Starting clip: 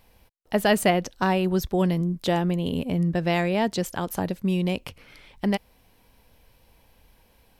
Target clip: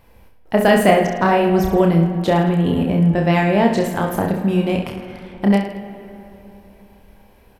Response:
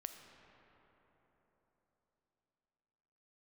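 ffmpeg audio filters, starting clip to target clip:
-filter_complex "[0:a]aecho=1:1:30|66|109.2|161|223.2:0.631|0.398|0.251|0.158|0.1,asplit=2[link_01][link_02];[1:a]atrim=start_sample=2205,asetrate=52920,aresample=44100,lowpass=2600[link_03];[link_02][link_03]afir=irnorm=-1:irlink=0,volume=7.5dB[link_04];[link_01][link_04]amix=inputs=2:normalize=0"

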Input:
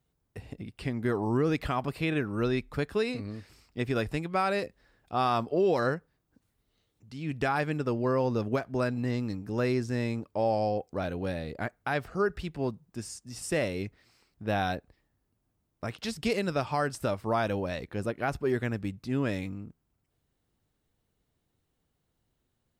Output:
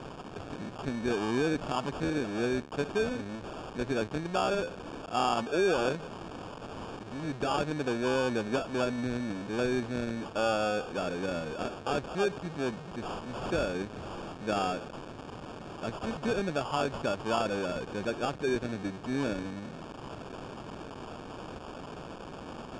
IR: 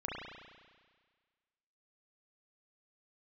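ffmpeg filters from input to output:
-af "aeval=exprs='val(0)+0.5*0.0282*sgn(val(0))':channel_layout=same,highpass=190,acrusher=samples=22:mix=1:aa=0.000001,lowpass=frequency=8200:width=0.5412,lowpass=frequency=8200:width=1.3066,highshelf=frequency=4700:gain=-8,volume=-2.5dB"

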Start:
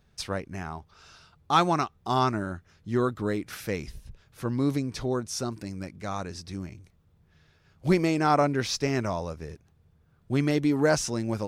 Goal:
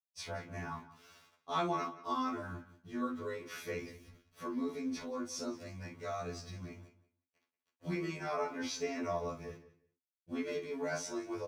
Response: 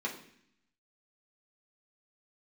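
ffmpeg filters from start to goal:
-filter_complex "[0:a]acompressor=threshold=-32dB:ratio=2,aeval=exprs='val(0)*gte(abs(val(0)),0.00282)':channel_layout=same,asplit=2[link_01][link_02];[link_02]adelay=178,lowpass=frequency=4700:poles=1,volume=-16dB,asplit=2[link_03][link_04];[link_04]adelay=178,lowpass=frequency=4700:poles=1,volume=0.19[link_05];[link_01][link_03][link_05]amix=inputs=3:normalize=0[link_06];[1:a]atrim=start_sample=2205,atrim=end_sample=3087[link_07];[link_06][link_07]afir=irnorm=-1:irlink=0,afftfilt=real='re*2*eq(mod(b,4),0)':imag='im*2*eq(mod(b,4),0)':win_size=2048:overlap=0.75,volume=-5.5dB"

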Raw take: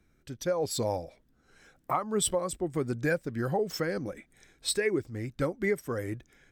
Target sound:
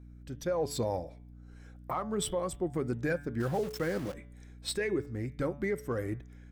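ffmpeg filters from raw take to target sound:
ffmpeg -i in.wav -filter_complex "[0:a]asplit=2[link_01][link_02];[link_02]adynamicsmooth=sensitivity=4.5:basefreq=1900,volume=-2.5dB[link_03];[link_01][link_03]amix=inputs=2:normalize=0,alimiter=limit=-18dB:level=0:latency=1:release=18,asettb=1/sr,asplit=3[link_04][link_05][link_06];[link_04]atrim=end=3.404[link_07];[link_05]atrim=start=3.4:end=4.14,asetpts=PTS-STARTPTS,afade=type=in:duration=0.004:curve=qsin,afade=type=out:start_time=0.736:duration=0.004:curve=qsin,aeval=exprs='val(0)*gte(abs(val(0)),0.0168)':channel_layout=same[link_08];[link_06]atrim=start=4.136[link_09];[link_07][link_08]acrossfade=duration=0.004:curve1=hsin:curve2=qsin[link_10];[link_10][link_09]acrossfade=duration=0.004:curve1=qsin:curve2=hsin,aeval=exprs='val(0)+0.00631*(sin(2*PI*60*n/s)+sin(2*PI*2*60*n/s)/2+sin(2*PI*3*60*n/s)/3+sin(2*PI*4*60*n/s)/4+sin(2*PI*5*60*n/s)/5)':channel_layout=same,bandreject=frequency=143.5:width_type=h:width=4,bandreject=frequency=287:width_type=h:width=4,bandreject=frequency=430.5:width_type=h:width=4,bandreject=frequency=574:width_type=h:width=4,bandreject=frequency=717.5:width_type=h:width=4,bandreject=frequency=861:width_type=h:width=4,bandreject=frequency=1004.5:width_type=h:width=4,bandreject=frequency=1148:width_type=h:width=4,bandreject=frequency=1291.5:width_type=h:width=4,bandreject=frequency=1435:width_type=h:width=4,bandreject=frequency=1578.5:width_type=h:width=4,bandreject=frequency=1722:width_type=h:width=4,bandreject=frequency=1865.5:width_type=h:width=4,bandreject=frequency=2009:width_type=h:width=4,bandreject=frequency=2152.5:width_type=h:width=4,bandreject=frequency=2296:width_type=h:width=4,bandreject=frequency=2439.5:width_type=h:width=4,bandreject=frequency=2583:width_type=h:width=4,bandreject=frequency=2726.5:width_type=h:width=4,bandreject=frequency=2870:width_type=h:width=4,bandreject=frequency=3013.5:width_type=h:width=4,bandreject=frequency=3157:width_type=h:width=4,bandreject=frequency=3300.5:width_type=h:width=4,bandreject=frequency=3444:width_type=h:width=4,bandreject=frequency=3587.5:width_type=h:width=4,bandreject=frequency=3731:width_type=h:width=4,volume=-5dB" out.wav

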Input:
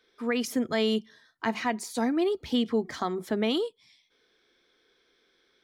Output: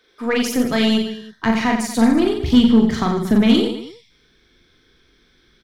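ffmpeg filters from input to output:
ffmpeg -i in.wav -af "asubboost=boost=11:cutoff=160,aecho=1:1:40|90|152.5|230.6|328.3:0.631|0.398|0.251|0.158|0.1,aeval=exprs='0.335*(cos(1*acos(clip(val(0)/0.335,-1,1)))-cos(1*PI/2))+0.0119*(cos(8*acos(clip(val(0)/0.335,-1,1)))-cos(8*PI/2))':channel_layout=same,volume=7.5dB" out.wav

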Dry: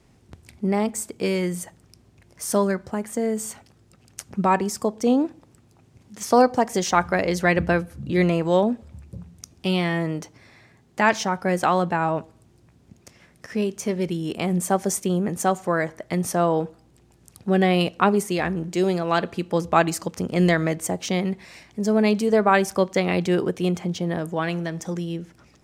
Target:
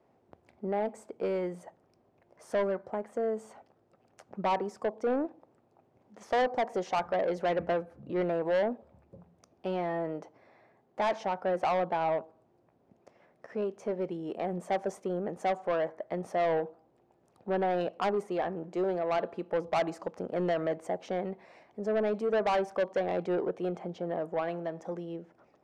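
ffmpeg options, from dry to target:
ffmpeg -i in.wav -af "bandpass=frequency=640:width_type=q:width=1.6:csg=0,asoftclip=type=tanh:threshold=-23dB" out.wav

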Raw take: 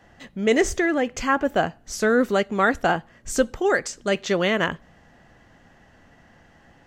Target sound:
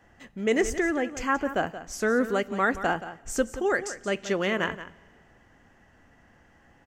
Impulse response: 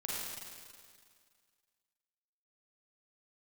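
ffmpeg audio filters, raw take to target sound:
-filter_complex "[0:a]equalizer=frequency=160:width_type=o:width=0.67:gain=-4,equalizer=frequency=630:width_type=o:width=0.67:gain=-3,equalizer=frequency=4000:width_type=o:width=0.67:gain=-7,aecho=1:1:176:0.224,asplit=2[link_01][link_02];[1:a]atrim=start_sample=2205[link_03];[link_02][link_03]afir=irnorm=-1:irlink=0,volume=-25dB[link_04];[link_01][link_04]amix=inputs=2:normalize=0,volume=-4dB"

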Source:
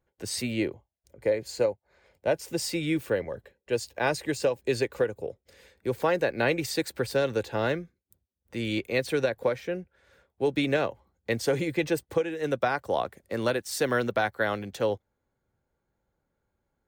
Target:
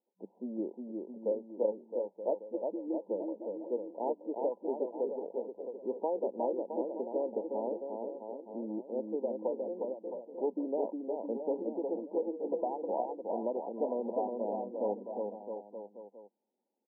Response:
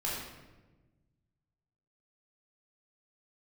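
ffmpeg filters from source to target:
-filter_complex "[0:a]afftfilt=real='re*between(b*sr/4096,190,1000)':imag='im*between(b*sr/4096,190,1000)':win_size=4096:overlap=0.75,adynamicequalizer=threshold=0.0126:dfrequency=310:dqfactor=0.81:tfrequency=310:tqfactor=0.81:attack=5:release=100:ratio=0.375:range=2:mode=cutabove:tftype=bell,asplit=2[link_01][link_02];[link_02]aecho=0:1:360|666|926.1|1147|1335:0.631|0.398|0.251|0.158|0.1[link_03];[link_01][link_03]amix=inputs=2:normalize=0,volume=-6.5dB"

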